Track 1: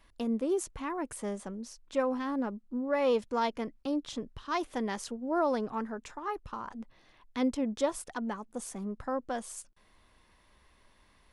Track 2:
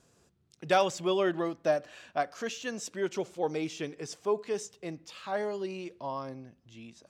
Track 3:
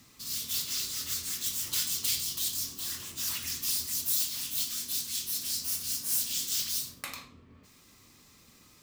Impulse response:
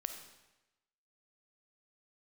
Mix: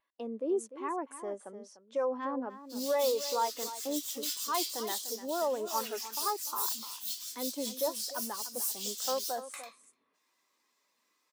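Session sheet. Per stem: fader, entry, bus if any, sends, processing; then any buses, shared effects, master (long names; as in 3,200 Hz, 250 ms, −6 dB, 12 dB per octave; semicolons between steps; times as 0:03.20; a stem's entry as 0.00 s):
+1.0 dB, 0.00 s, no send, echo send −9 dB, brickwall limiter −27 dBFS, peak gain reduction 10 dB
muted
−1.5 dB, 2.50 s, no send, echo send −22 dB, soft clipping −21 dBFS, distortion −21 dB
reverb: not used
echo: single-tap delay 298 ms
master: high-pass filter 420 Hz 12 dB per octave; every bin expanded away from the loudest bin 1.5 to 1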